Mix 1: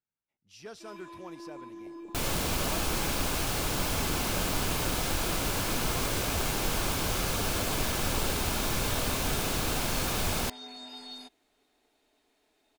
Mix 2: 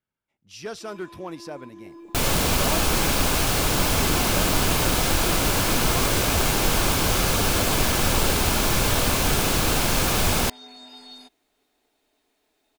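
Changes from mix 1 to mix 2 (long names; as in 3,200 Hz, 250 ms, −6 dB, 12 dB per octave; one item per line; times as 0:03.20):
speech +10.5 dB
second sound +8.5 dB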